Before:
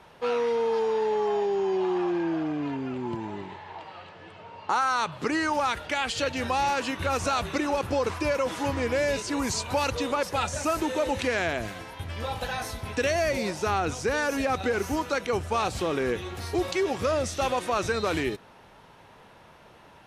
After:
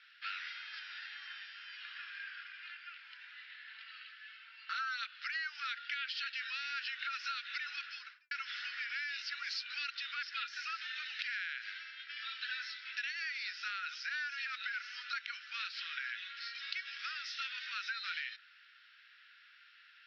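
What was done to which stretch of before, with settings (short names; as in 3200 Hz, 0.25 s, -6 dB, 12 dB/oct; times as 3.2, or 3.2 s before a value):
3.67–5.07 comb 4.5 ms
7.85–8.31 studio fade out
whole clip: Chebyshev band-pass 1400–5300 Hz, order 5; compressor, threshold -35 dBFS; gain -1 dB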